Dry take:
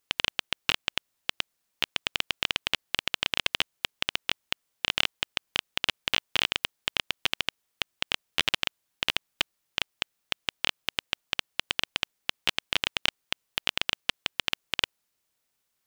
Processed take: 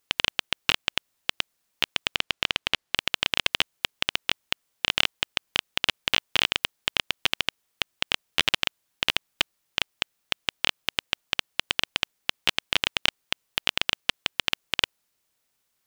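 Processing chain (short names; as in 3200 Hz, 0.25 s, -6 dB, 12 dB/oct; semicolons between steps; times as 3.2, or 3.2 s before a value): 2.15–2.96 high shelf 8800 Hz -9.5 dB; gain +3 dB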